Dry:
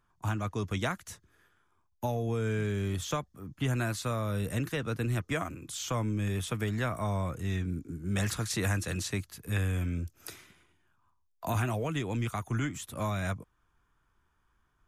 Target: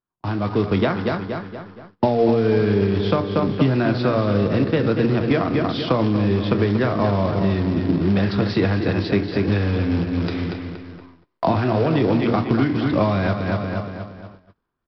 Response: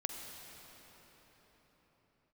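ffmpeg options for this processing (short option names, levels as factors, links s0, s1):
-filter_complex "[0:a]dynaudnorm=f=330:g=5:m=5.62,bandreject=f=58.84:t=h:w=4,bandreject=f=117.68:t=h:w=4,bandreject=f=176.52:t=h:w=4,bandreject=f=235.36:t=h:w=4,bandreject=f=294.2:t=h:w=4,bandreject=f=353.04:t=h:w=4,bandreject=f=411.88:t=h:w=4,bandreject=f=470.72:t=h:w=4,bandreject=f=529.56:t=h:w=4,bandreject=f=588.4:t=h:w=4,bandreject=f=647.24:t=h:w=4,bandreject=f=706.08:t=h:w=4,bandreject=f=764.92:t=h:w=4,bandreject=f=823.76:t=h:w=4,bandreject=f=882.6:t=h:w=4,bandreject=f=941.44:t=h:w=4,bandreject=f=1000.28:t=h:w=4,bandreject=f=1059.12:t=h:w=4,bandreject=f=1117.96:t=h:w=4,bandreject=f=1176.8:t=h:w=4,bandreject=f=1235.64:t=h:w=4,bandreject=f=1294.48:t=h:w=4,bandreject=f=1353.32:t=h:w=4,bandreject=f=1412.16:t=h:w=4,bandreject=f=1471:t=h:w=4,bandreject=f=1529.84:t=h:w=4,bandreject=f=1588.68:t=h:w=4,bandreject=f=1647.52:t=h:w=4,bandreject=f=1706.36:t=h:w=4,bandreject=f=1765.2:t=h:w=4,bandreject=f=1824.04:t=h:w=4,bandreject=f=1882.88:t=h:w=4,bandreject=f=1941.72:t=h:w=4,bandreject=f=2000.56:t=h:w=4,bandreject=f=2059.4:t=h:w=4,bandreject=f=2118.24:t=h:w=4,bandreject=f=2177.08:t=h:w=4,bandreject=f=2235.92:t=h:w=4,asplit=2[s0][s1];[s1]adelay=235,lowpass=f=3900:p=1,volume=0.398,asplit=2[s2][s3];[s3]adelay=235,lowpass=f=3900:p=1,volume=0.47,asplit=2[s4][s5];[s5]adelay=235,lowpass=f=3900:p=1,volume=0.47,asplit=2[s6][s7];[s7]adelay=235,lowpass=f=3900:p=1,volume=0.47,asplit=2[s8][s9];[s9]adelay=235,lowpass=f=3900:p=1,volume=0.47[s10];[s2][s4][s6][s8][s10]amix=inputs=5:normalize=0[s11];[s0][s11]amix=inputs=2:normalize=0,acompressor=threshold=0.0631:ratio=10,aresample=11025,acrusher=bits=3:mode=log:mix=0:aa=0.000001,aresample=44100,equalizer=f=330:w=0.37:g=13,asplit=2[s12][s13];[s13]adelay=30,volume=0.2[s14];[s12][s14]amix=inputs=2:normalize=0,agate=range=0.0708:threshold=0.00891:ratio=16:detection=peak,lowshelf=f=150:g=-3"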